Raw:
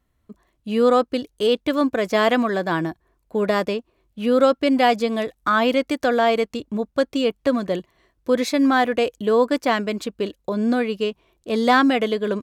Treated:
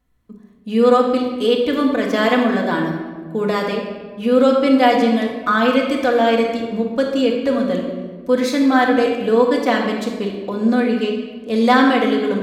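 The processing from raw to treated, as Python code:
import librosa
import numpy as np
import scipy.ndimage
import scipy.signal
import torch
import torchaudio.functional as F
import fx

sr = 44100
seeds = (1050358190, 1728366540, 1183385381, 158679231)

y = fx.room_shoebox(x, sr, seeds[0], volume_m3=1300.0, walls='mixed', distance_m=1.9)
y = F.gain(torch.from_numpy(y), -1.0).numpy()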